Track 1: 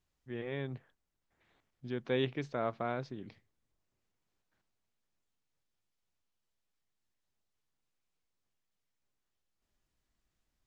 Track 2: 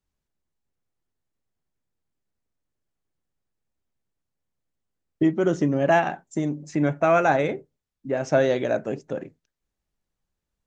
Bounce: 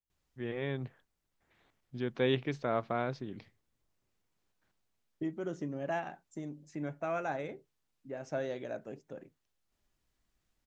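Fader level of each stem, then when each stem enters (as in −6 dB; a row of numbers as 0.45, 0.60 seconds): +2.5, −16.0 decibels; 0.10, 0.00 seconds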